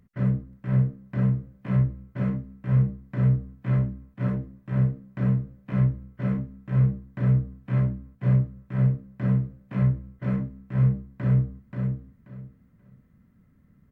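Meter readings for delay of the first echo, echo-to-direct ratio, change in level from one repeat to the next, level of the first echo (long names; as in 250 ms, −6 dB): 532 ms, −4.5 dB, −13.0 dB, −4.5 dB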